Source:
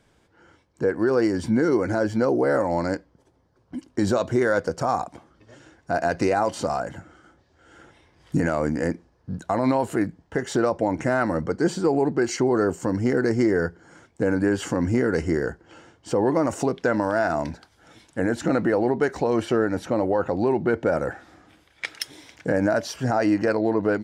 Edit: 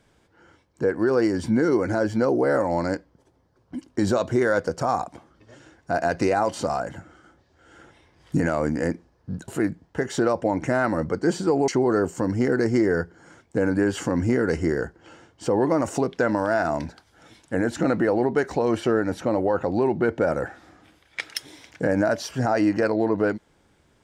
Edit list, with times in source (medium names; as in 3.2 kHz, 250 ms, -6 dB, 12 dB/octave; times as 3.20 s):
9.48–9.85 s: delete
12.05–12.33 s: delete